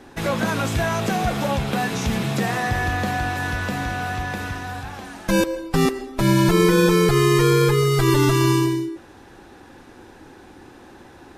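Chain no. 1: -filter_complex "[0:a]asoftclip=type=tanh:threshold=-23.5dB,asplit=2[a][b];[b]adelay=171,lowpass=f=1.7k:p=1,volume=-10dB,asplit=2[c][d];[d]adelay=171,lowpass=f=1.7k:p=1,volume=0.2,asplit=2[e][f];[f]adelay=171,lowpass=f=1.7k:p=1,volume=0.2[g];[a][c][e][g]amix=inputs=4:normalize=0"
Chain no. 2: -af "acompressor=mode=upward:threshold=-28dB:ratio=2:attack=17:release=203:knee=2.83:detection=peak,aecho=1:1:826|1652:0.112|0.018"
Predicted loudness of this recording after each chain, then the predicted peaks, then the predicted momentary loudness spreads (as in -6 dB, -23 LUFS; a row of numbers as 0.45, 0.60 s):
-27.5, -20.5 LUFS; -20.5, -6.5 dBFS; 20, 22 LU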